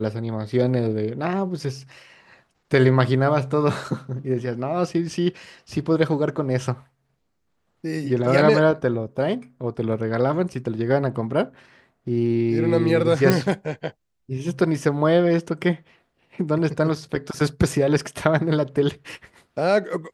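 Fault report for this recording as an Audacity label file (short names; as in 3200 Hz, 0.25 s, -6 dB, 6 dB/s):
13.300000	13.300000	pop -5 dBFS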